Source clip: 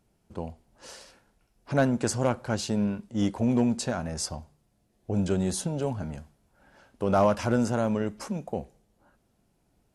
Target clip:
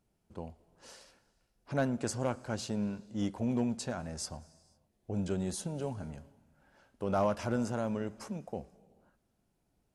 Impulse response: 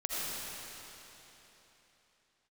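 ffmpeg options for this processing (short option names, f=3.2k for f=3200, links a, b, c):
-filter_complex "[0:a]asplit=2[a][b];[1:a]atrim=start_sample=2205,afade=t=out:st=0.45:d=0.01,atrim=end_sample=20286,adelay=114[c];[b][c]afir=irnorm=-1:irlink=0,volume=-26.5dB[d];[a][d]amix=inputs=2:normalize=0,volume=-7.5dB"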